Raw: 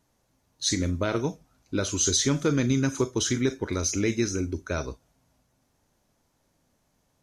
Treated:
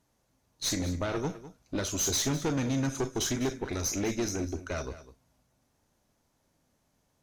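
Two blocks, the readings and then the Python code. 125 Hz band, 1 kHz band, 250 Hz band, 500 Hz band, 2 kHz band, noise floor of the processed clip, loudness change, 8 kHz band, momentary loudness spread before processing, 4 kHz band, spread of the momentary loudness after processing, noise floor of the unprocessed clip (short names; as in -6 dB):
-5.5 dB, -2.0 dB, -5.0 dB, -5.0 dB, -5.0 dB, -74 dBFS, -4.5 dB, -4.0 dB, 9 LU, -4.5 dB, 9 LU, -71 dBFS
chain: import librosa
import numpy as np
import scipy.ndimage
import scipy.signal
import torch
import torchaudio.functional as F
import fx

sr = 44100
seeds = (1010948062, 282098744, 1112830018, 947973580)

p1 = fx.tube_stage(x, sr, drive_db=24.0, bias=0.55)
y = p1 + fx.echo_single(p1, sr, ms=202, db=-15.0, dry=0)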